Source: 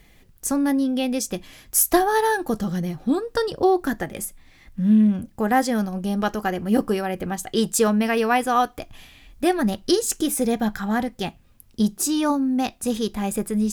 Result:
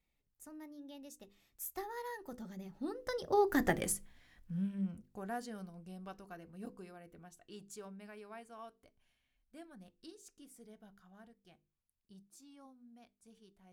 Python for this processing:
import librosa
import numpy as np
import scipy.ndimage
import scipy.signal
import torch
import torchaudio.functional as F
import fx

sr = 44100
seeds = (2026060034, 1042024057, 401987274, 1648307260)

y = fx.doppler_pass(x, sr, speed_mps=29, closest_m=4.5, pass_at_s=3.74)
y = fx.hum_notches(y, sr, base_hz=50, count=10)
y = y * librosa.db_to_amplitude(-2.0)